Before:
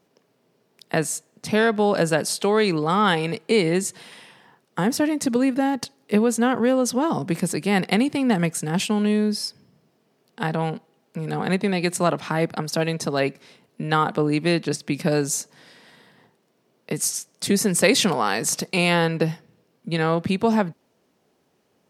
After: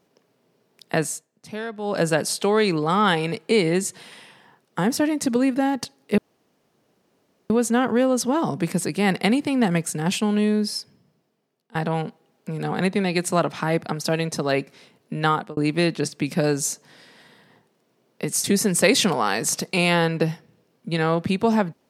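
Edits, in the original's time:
1.05–2.04 s: dip -12 dB, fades 0.23 s
6.18 s: insert room tone 1.32 s
9.37–10.43 s: fade out, to -20.5 dB
13.98–14.25 s: fade out
17.12–17.44 s: delete

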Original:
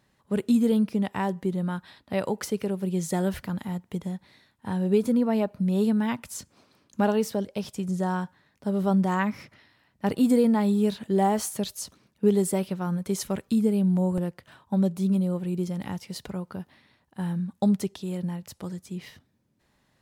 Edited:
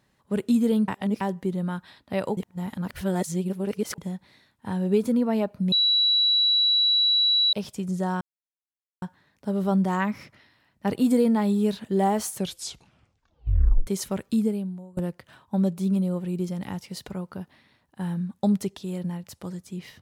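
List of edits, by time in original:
0.88–1.21 s: reverse
2.37–3.98 s: reverse
5.72–7.53 s: bleep 3.92 kHz -17.5 dBFS
8.21 s: insert silence 0.81 s
11.51 s: tape stop 1.55 s
13.61–14.16 s: fade out quadratic, to -24 dB

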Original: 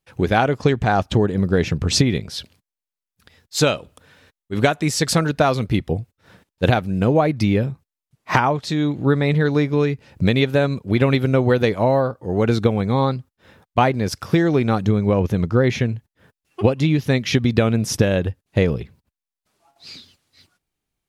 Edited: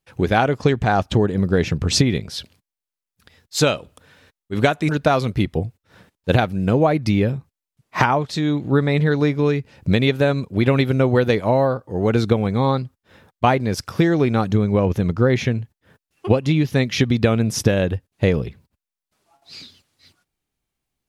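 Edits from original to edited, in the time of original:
4.89–5.23 s: delete

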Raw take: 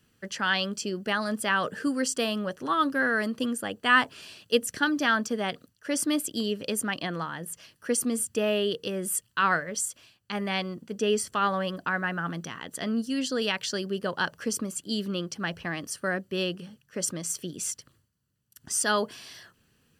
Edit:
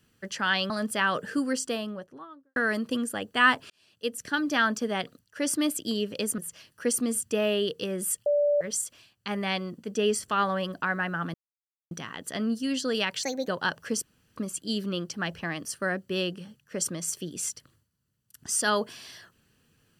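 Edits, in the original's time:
0.70–1.19 s: delete
1.84–3.05 s: studio fade out
4.19–5.06 s: fade in
6.87–7.42 s: delete
9.30–9.65 s: bleep 583 Hz -20 dBFS
12.38 s: insert silence 0.57 s
13.70–14.04 s: speed 135%
14.58 s: insert room tone 0.34 s

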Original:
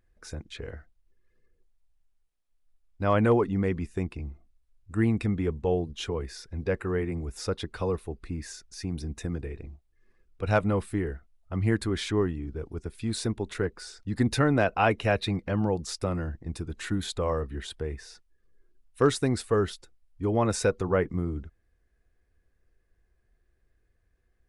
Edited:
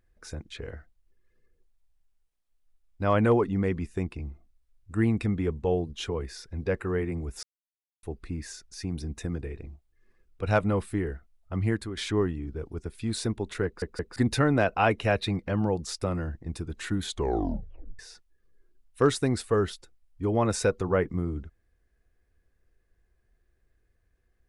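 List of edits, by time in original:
7.43–8.03 s: mute
11.60–11.97 s: fade out, to -10.5 dB
13.65 s: stutter in place 0.17 s, 3 plays
17.07 s: tape stop 0.92 s

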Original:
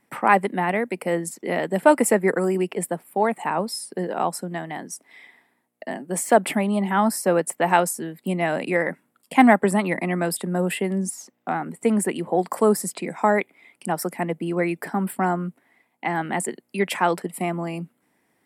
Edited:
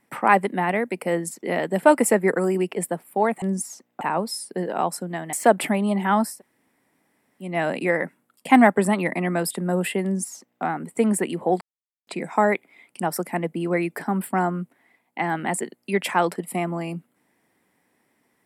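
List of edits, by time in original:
4.74–6.19 s: delete
7.16–8.35 s: room tone, crossfade 0.24 s
10.90–11.49 s: copy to 3.42 s
12.47–12.93 s: mute

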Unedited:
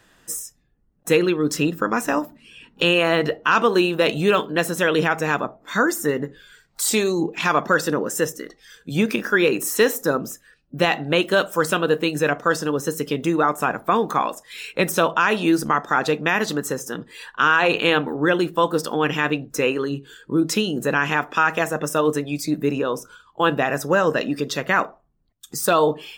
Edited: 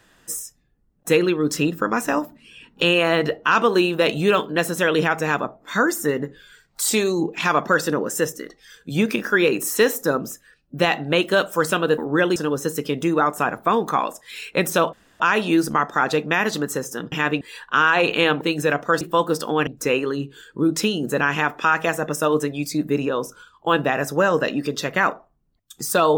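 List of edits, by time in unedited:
11.98–12.58 s: swap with 18.07–18.45 s
15.15 s: insert room tone 0.27 s
19.11–19.40 s: move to 17.07 s

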